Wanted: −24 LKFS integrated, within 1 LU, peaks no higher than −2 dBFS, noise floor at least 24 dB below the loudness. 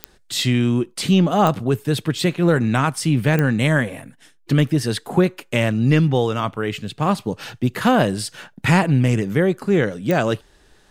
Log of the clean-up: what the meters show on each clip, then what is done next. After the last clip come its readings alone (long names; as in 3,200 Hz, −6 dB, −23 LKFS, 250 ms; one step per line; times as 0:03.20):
number of clicks 4; integrated loudness −19.5 LKFS; sample peak −3.5 dBFS; target loudness −24.0 LKFS
→ click removal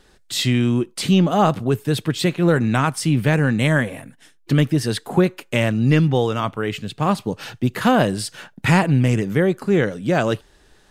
number of clicks 0; integrated loudness −19.5 LKFS; sample peak −3.5 dBFS; target loudness −24.0 LKFS
→ level −4.5 dB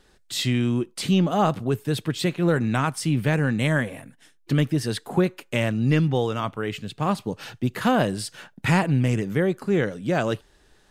integrated loudness −24.0 LKFS; sample peak −8.0 dBFS; background noise floor −59 dBFS